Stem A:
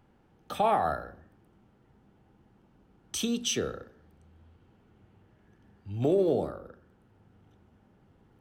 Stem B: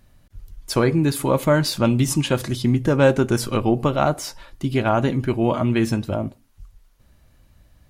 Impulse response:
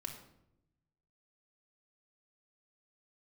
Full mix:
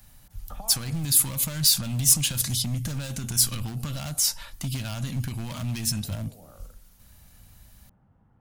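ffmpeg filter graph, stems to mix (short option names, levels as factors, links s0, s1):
-filter_complex "[0:a]lowpass=1100,acompressor=threshold=0.0316:ratio=6,volume=1.33[s0];[1:a]alimiter=limit=0.211:level=0:latency=1:release=43,asoftclip=type=hard:threshold=0.0891,volume=1.06,asplit=2[s1][s2];[s2]apad=whole_len=370593[s3];[s0][s3]sidechaincompress=threshold=0.0141:ratio=3:attack=16:release=872[s4];[s4][s1]amix=inputs=2:normalize=0,acrossover=split=230|3000[s5][s6][s7];[s6]acompressor=threshold=0.0126:ratio=5[s8];[s5][s8][s7]amix=inputs=3:normalize=0,crystalizer=i=2.5:c=0,equalizer=f=380:t=o:w=0.89:g=-14.5"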